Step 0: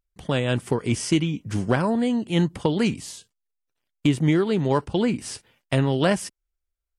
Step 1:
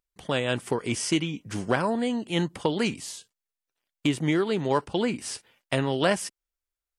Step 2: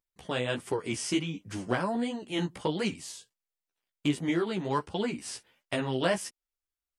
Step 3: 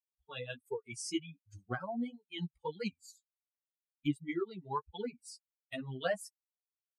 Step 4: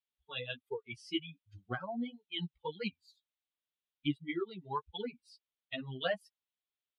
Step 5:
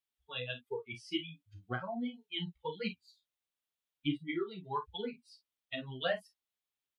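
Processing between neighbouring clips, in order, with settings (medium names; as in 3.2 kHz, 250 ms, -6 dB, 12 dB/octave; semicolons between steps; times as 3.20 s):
bass shelf 230 Hz -11 dB
flange 1.4 Hz, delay 9.5 ms, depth 8.1 ms, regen 0%; trim -1.5 dB
expander on every frequency bin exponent 3; trim -2 dB
resonant high shelf 5.1 kHz -14 dB, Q 3; trim -1 dB
early reflections 32 ms -9 dB, 49 ms -13.5 dB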